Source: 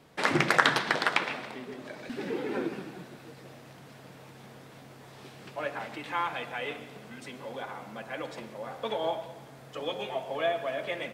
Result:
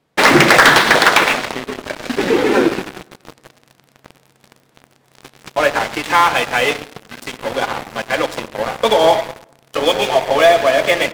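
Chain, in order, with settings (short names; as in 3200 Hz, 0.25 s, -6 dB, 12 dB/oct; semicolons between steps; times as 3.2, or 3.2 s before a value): dynamic EQ 140 Hz, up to -6 dB, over -49 dBFS, Q 0.88; sample leveller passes 5; tape echo 0.103 s, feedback 45%, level -17.5 dB, low-pass 1100 Hz; gain +2 dB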